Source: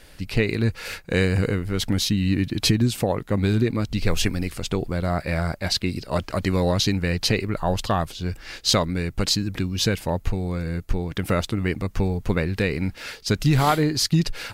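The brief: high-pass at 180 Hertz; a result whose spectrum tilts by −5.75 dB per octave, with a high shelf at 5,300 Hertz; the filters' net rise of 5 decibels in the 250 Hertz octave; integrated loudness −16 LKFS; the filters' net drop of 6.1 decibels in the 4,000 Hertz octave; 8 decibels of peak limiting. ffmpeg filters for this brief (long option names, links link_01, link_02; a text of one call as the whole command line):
ffmpeg -i in.wav -af "highpass=180,equalizer=frequency=250:width_type=o:gain=9,equalizer=frequency=4000:width_type=o:gain=-3.5,highshelf=frequency=5300:gain=-8.5,volume=8.5dB,alimiter=limit=-3dB:level=0:latency=1" out.wav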